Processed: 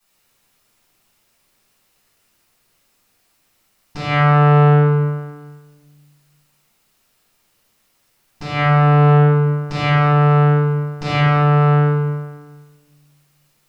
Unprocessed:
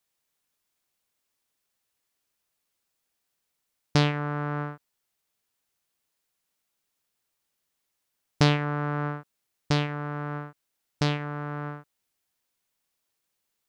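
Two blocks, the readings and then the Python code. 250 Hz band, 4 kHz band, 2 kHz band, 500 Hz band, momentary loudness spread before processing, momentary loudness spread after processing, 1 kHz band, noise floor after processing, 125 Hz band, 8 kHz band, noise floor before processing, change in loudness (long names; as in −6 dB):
+13.0 dB, +4.0 dB, +11.5 dB, +15.0 dB, 15 LU, 15 LU, +16.0 dB, −63 dBFS, +17.0 dB, can't be measured, −80 dBFS, +14.0 dB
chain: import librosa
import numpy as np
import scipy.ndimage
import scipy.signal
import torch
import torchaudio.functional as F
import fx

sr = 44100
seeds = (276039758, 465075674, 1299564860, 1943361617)

y = fx.over_compress(x, sr, threshold_db=-29.0, ratio=-1.0)
y = fx.echo_feedback(y, sr, ms=252, feedback_pct=46, wet_db=-23)
y = fx.room_shoebox(y, sr, seeds[0], volume_m3=560.0, walls='mixed', distance_m=9.3)
y = fx.transformer_sat(y, sr, knee_hz=290.0)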